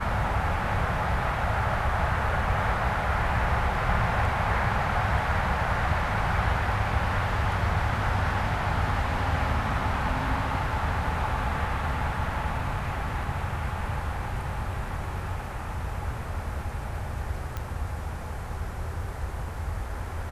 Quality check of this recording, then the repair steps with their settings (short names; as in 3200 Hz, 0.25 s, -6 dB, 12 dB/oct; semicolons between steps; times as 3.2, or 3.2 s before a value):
17.57 pop -18 dBFS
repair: de-click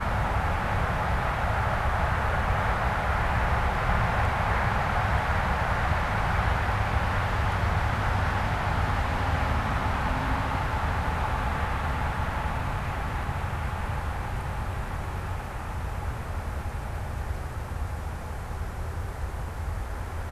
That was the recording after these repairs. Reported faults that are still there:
none